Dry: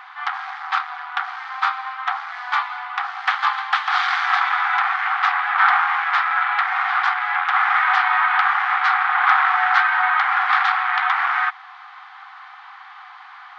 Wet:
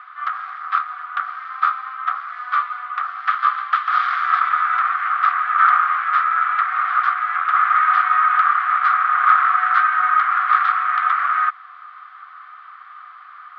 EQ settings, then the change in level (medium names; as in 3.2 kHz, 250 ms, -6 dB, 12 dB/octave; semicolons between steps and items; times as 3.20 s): two resonant band-passes 860 Hz, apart 1 oct; distance through air 94 m; tilt EQ +6 dB/octave; +5.0 dB